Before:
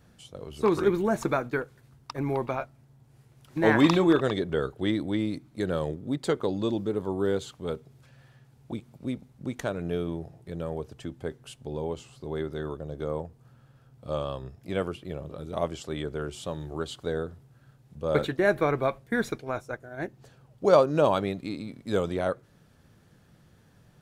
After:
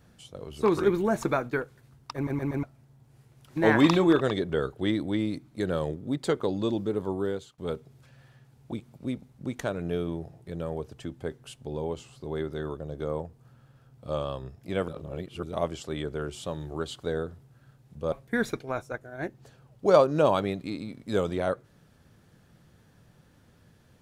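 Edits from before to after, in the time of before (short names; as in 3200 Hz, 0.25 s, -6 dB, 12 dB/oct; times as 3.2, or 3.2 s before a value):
2.15 stutter in place 0.12 s, 4 plays
7.1–7.58 fade out linear, to -19.5 dB
14.88–15.43 reverse
18.12–18.91 cut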